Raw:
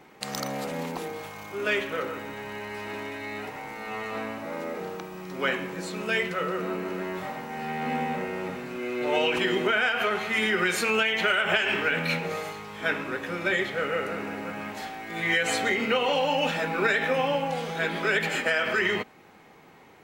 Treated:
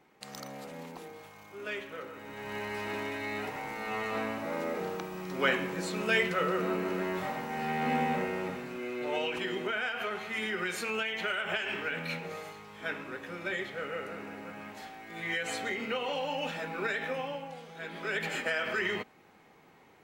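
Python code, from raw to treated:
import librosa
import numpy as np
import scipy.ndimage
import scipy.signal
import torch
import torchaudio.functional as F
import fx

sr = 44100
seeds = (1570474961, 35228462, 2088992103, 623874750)

y = fx.gain(x, sr, db=fx.line((2.13, -11.5), (2.56, -0.5), (8.18, -0.5), (9.33, -9.0), (17.09, -9.0), (17.68, -16.5), (18.26, -6.5)))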